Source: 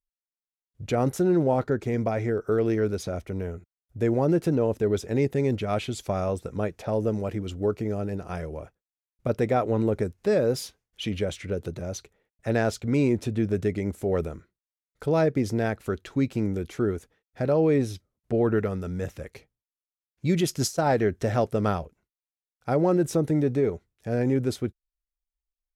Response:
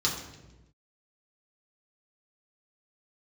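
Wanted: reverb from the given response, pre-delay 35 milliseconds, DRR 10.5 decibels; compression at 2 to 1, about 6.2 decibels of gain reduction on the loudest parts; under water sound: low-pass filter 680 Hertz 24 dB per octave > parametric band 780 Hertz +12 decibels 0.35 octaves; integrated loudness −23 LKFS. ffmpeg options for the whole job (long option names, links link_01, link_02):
-filter_complex "[0:a]acompressor=threshold=-30dB:ratio=2,asplit=2[link_01][link_02];[1:a]atrim=start_sample=2205,adelay=35[link_03];[link_02][link_03]afir=irnorm=-1:irlink=0,volume=-19dB[link_04];[link_01][link_04]amix=inputs=2:normalize=0,lowpass=frequency=680:width=0.5412,lowpass=frequency=680:width=1.3066,equalizer=frequency=780:width_type=o:width=0.35:gain=12,volume=8dB"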